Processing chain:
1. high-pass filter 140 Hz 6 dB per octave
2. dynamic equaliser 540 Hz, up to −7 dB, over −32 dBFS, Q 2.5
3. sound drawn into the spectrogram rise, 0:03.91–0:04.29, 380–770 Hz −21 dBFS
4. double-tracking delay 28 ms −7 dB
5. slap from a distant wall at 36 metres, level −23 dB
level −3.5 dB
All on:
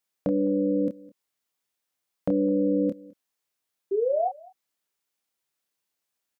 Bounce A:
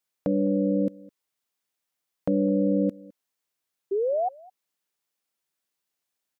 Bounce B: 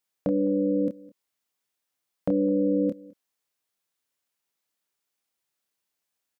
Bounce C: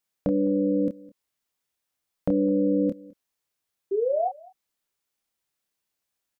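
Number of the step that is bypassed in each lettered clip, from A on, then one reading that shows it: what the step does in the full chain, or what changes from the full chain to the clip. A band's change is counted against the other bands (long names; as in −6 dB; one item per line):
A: 4, 125 Hz band +4.5 dB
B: 3, change in momentary loudness spread −5 LU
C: 1, 125 Hz band +1.5 dB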